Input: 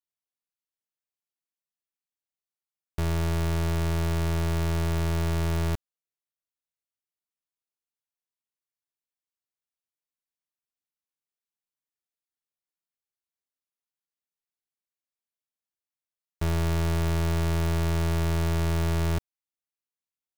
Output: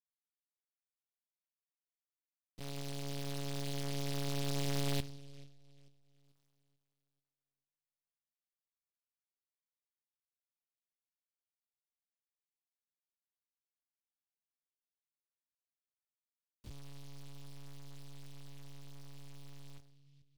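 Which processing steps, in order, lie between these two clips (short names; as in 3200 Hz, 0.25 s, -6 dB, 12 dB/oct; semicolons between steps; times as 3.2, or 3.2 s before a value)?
Doppler pass-by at 6.36, 45 m/s, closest 4.3 m; dark delay 0.439 s, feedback 33%, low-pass 480 Hz, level -17 dB; on a send at -4 dB: reverb RT60 0.75 s, pre-delay 6 ms; on the sum: monotone LPC vocoder at 8 kHz 140 Hz; noise-modulated delay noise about 3600 Hz, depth 0.19 ms; gain +15.5 dB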